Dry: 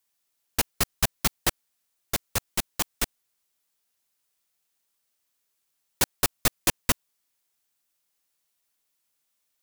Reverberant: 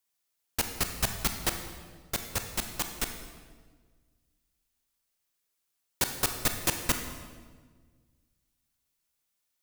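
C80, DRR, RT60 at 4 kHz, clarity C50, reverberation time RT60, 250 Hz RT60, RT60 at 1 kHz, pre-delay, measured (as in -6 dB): 8.5 dB, 5.5 dB, 1.2 s, 7.0 dB, 1.5 s, 1.9 s, 1.4 s, 26 ms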